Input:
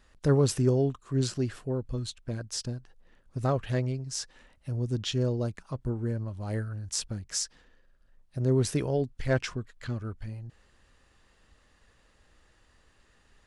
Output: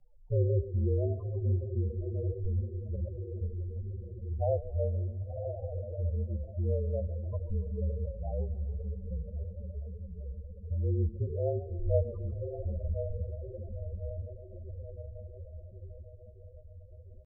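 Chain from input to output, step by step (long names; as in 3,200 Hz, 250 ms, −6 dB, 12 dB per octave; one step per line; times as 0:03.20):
phaser with its sweep stopped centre 770 Hz, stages 4
on a send: feedback delay with all-pass diffusion 844 ms, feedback 57%, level −7 dB
on the sum: tempo change 0.78×
low-pass filter 1,300 Hz 24 dB per octave
hum removal 86.46 Hz, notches 9
in parallel at −1 dB: downward compressor 10 to 1, threshold −38 dBFS, peak gain reduction 16 dB
on the sum: spectral peaks only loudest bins 8
dynamic equaliser 620 Hz, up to +4 dB, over −47 dBFS, Q 2.3
frequency shifter −38 Hz
feedback echo with a swinging delay time 141 ms, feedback 53%, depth 105 cents, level −17 dB
level −2 dB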